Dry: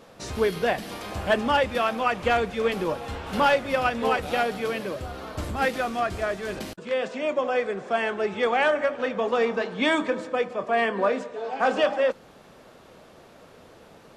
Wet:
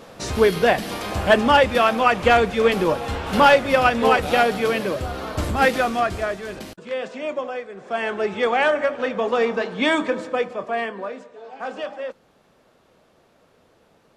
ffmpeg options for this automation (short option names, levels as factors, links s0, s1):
-af "volume=9.44,afade=t=out:st=5.76:d=0.74:silence=0.398107,afade=t=out:st=7.35:d=0.34:silence=0.375837,afade=t=in:st=7.69:d=0.46:silence=0.237137,afade=t=out:st=10.35:d=0.71:silence=0.281838"